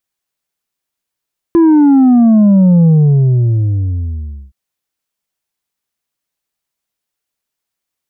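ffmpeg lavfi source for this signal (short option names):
-f lavfi -i "aevalsrc='0.562*clip((2.97-t)/1.66,0,1)*tanh(1.58*sin(2*PI*340*2.97/log(65/340)*(exp(log(65/340)*t/2.97)-1)))/tanh(1.58)':d=2.97:s=44100"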